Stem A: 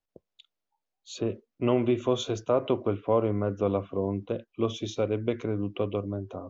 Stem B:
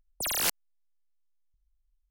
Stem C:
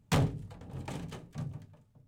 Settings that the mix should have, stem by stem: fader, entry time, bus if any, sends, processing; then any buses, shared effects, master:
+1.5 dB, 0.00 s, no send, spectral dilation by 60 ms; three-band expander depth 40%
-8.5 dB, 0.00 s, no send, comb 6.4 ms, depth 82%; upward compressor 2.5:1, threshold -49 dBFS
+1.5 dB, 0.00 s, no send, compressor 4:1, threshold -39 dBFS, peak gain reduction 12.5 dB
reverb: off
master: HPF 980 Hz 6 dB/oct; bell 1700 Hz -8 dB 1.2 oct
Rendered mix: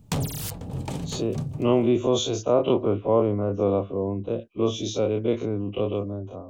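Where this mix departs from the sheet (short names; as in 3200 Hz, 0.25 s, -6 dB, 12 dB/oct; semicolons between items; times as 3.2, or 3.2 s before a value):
stem C +1.5 dB -> +12.5 dB; master: missing HPF 980 Hz 6 dB/oct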